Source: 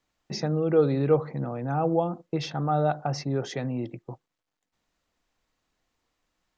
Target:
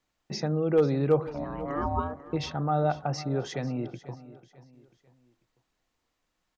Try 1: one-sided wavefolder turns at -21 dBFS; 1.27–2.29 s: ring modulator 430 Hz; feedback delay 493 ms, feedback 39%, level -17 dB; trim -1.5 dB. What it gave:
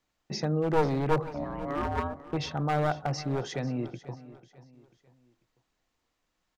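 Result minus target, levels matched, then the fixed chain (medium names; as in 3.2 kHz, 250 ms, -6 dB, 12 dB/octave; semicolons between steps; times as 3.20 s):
one-sided wavefolder: distortion +28 dB
one-sided wavefolder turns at -11.5 dBFS; 1.27–2.29 s: ring modulator 430 Hz; feedback delay 493 ms, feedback 39%, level -17 dB; trim -1.5 dB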